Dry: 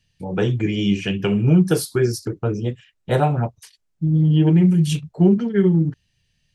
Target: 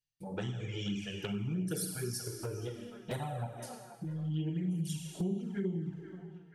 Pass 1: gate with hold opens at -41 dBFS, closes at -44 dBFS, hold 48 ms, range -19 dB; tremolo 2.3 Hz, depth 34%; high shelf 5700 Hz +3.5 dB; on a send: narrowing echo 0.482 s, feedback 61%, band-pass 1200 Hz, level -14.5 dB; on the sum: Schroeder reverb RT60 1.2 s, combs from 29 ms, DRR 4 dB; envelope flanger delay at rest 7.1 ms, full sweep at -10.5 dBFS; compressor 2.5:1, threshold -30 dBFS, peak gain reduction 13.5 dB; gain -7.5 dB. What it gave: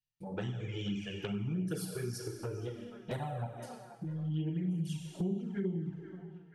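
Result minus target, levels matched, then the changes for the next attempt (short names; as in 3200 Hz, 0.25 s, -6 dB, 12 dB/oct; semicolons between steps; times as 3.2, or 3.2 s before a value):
8000 Hz band -6.5 dB
change: high shelf 5700 Hz +15 dB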